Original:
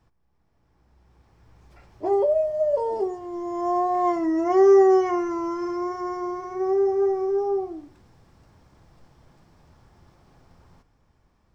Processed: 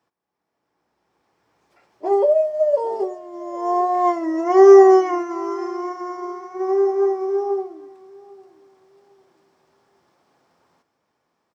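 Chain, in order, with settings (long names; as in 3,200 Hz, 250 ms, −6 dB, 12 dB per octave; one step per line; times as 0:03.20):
high-pass filter 320 Hz 12 dB per octave
repeating echo 801 ms, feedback 26%, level −16 dB
expander for the loud parts 1.5 to 1, over −36 dBFS
level +8.5 dB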